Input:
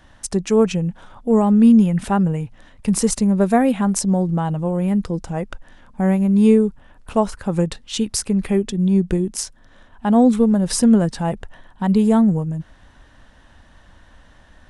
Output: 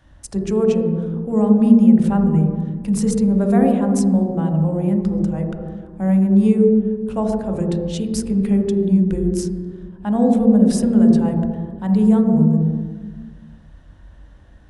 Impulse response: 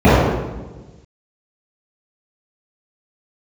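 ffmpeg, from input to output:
-filter_complex "[0:a]asplit=2[s0][s1];[1:a]atrim=start_sample=2205,asetrate=31311,aresample=44100[s2];[s1][s2]afir=irnorm=-1:irlink=0,volume=0.0211[s3];[s0][s3]amix=inputs=2:normalize=0,volume=0.422"

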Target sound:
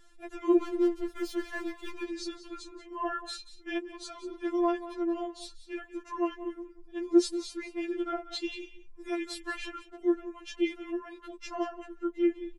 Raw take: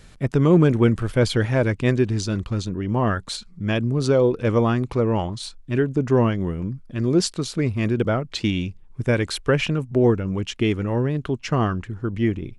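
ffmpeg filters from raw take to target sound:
-filter_complex "[0:a]aecho=1:1:184:0.188,asettb=1/sr,asplit=3[s0][s1][s2];[s0]atrim=end=0.594[s3];[s1]atrim=start=0.59:end=2.07,asetpts=PTS-STARTPTS,afade=t=in:d=0.004:c=qsin,afade=t=out:st=1.476:d=0.004:c=qsin,aeval=exprs='sgn(val(0))*max(abs(val(0))-0.0282,0)':c=same[s4];[s2]atrim=start=2.066[s5];[s3][s4]acrossfade=d=0.004:c1=hsin:c2=qsin[s6];[s6][s5]acrossfade=d=0.004:c1=qsin:c2=hsin,afftfilt=real='re*4*eq(mod(b,16),0)':imag='im*4*eq(mod(b,16),0)':win_size=2048:overlap=0.75,volume=0.376"

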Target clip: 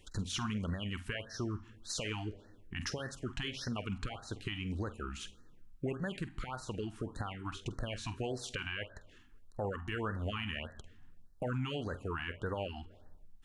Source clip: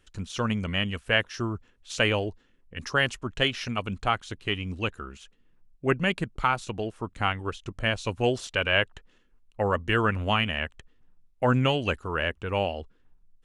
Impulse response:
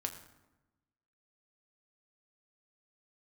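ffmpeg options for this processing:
-filter_complex "[0:a]acompressor=threshold=0.0112:ratio=4,asplit=2[s0][s1];[1:a]atrim=start_sample=2205,adelay=47[s2];[s1][s2]afir=irnorm=-1:irlink=0,volume=0.224[s3];[s0][s3]amix=inputs=2:normalize=0,alimiter=level_in=2.37:limit=0.0631:level=0:latency=1:release=15,volume=0.422,afftfilt=real='re*(1-between(b*sr/1024,470*pow(2800/470,0.5+0.5*sin(2*PI*1.7*pts/sr))/1.41,470*pow(2800/470,0.5+0.5*sin(2*PI*1.7*pts/sr))*1.41))':imag='im*(1-between(b*sr/1024,470*pow(2800/470,0.5+0.5*sin(2*PI*1.7*pts/sr))/1.41,470*pow(2800/470,0.5+0.5*sin(2*PI*1.7*pts/sr))*1.41))':win_size=1024:overlap=0.75,volume=1.68"

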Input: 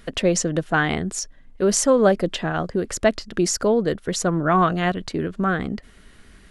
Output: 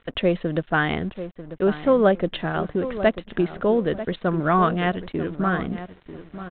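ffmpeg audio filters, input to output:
-filter_complex "[0:a]asplit=2[s0][s1];[s1]adelay=942,lowpass=f=1200:p=1,volume=0.282,asplit=2[s2][s3];[s3]adelay=942,lowpass=f=1200:p=1,volume=0.29,asplit=2[s4][s5];[s5]adelay=942,lowpass=f=1200:p=1,volume=0.29[s6];[s0][s2][s4][s6]amix=inputs=4:normalize=0,aresample=8000,aeval=exprs='sgn(val(0))*max(abs(val(0))-0.00501,0)':c=same,aresample=44100,volume=0.891"

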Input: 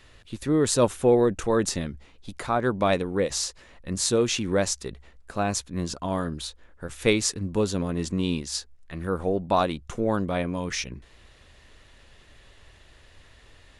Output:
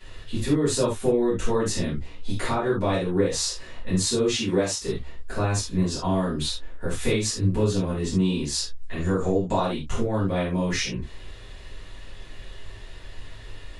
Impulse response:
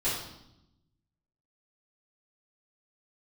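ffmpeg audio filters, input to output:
-filter_complex "[0:a]asettb=1/sr,asplit=3[s0][s1][s2];[s0]atrim=end=4.334[s3];[s1]atrim=start=4.33:end=4.81,asetpts=PTS-STARTPTS,afade=t=in:d=0.004:c=qsin,afade=t=out:st=0.476:d=0.004:c=qsin,highpass=f=220:p=1[s4];[s2]atrim=start=4.806[s5];[s3][s4]acrossfade=d=0.004:c1=hsin:c2=qsin[s6];[s6][s5]acrossfade=d=0.004:c1=qsin:c2=hsin,acompressor=threshold=0.0316:ratio=4,asettb=1/sr,asplit=3[s7][s8][s9];[s7]atrim=end=8.974[s10];[s8]atrim=start=8.97:end=9.53,asetpts=PTS-STARTPTS,afade=t=in:d=0.004:c=qsin,afade=t=out:st=0.556:d=0.004:c=qsin,lowpass=f=7000:t=q:w=15[s11];[s9]atrim=start=9.526[s12];[s10][s11]acrossfade=d=0.004:c1=hsin:c2=qsin[s13];[s13][s12]acrossfade=d=0.004:c1=qsin:c2=hsin[s14];[1:a]atrim=start_sample=2205,afade=t=out:st=0.14:d=0.01,atrim=end_sample=6615[s15];[s14][s15]afir=irnorm=-1:irlink=0"

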